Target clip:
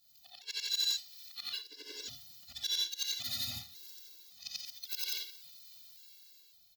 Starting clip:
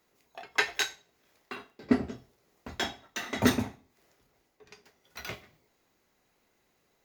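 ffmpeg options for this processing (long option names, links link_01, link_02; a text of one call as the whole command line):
ffmpeg -i in.wav -filter_complex "[0:a]afftfilt=real='re':imag='-im':win_size=8192:overlap=0.75,acrossover=split=1000[link_01][link_02];[link_02]dynaudnorm=framelen=190:gausssize=7:maxgain=11dB[link_03];[link_01][link_03]amix=inputs=2:normalize=0,alimiter=limit=-17.5dB:level=0:latency=1:release=51,areverse,acompressor=threshold=-41dB:ratio=8,areverse,crystalizer=i=4.5:c=0,equalizer=frequency=250:width_type=o:width=1:gain=-10,equalizer=frequency=500:width_type=o:width=1:gain=-5,equalizer=frequency=1000:width_type=o:width=1:gain=-11,equalizer=frequency=2000:width_type=o:width=1:gain=-11,equalizer=frequency=4000:width_type=o:width=1:gain=12,equalizer=frequency=8000:width_type=o:width=1:gain=-11,volume=27.5dB,asoftclip=hard,volume=-27.5dB,asplit=6[link_04][link_05][link_06][link_07][link_08][link_09];[link_05]adelay=332,afreqshift=31,volume=-23.5dB[link_10];[link_06]adelay=664,afreqshift=62,volume=-27.5dB[link_11];[link_07]adelay=996,afreqshift=93,volume=-31.5dB[link_12];[link_08]adelay=1328,afreqshift=124,volume=-35.5dB[link_13];[link_09]adelay=1660,afreqshift=155,volume=-39.6dB[link_14];[link_04][link_10][link_11][link_12][link_13][link_14]amix=inputs=6:normalize=0,asetrate=45938,aresample=44100,afftfilt=real='re*gt(sin(2*PI*0.9*pts/sr)*(1-2*mod(floor(b*sr/1024/290),2)),0)':imag='im*gt(sin(2*PI*0.9*pts/sr)*(1-2*mod(floor(b*sr/1024/290),2)),0)':win_size=1024:overlap=0.75,volume=2.5dB" out.wav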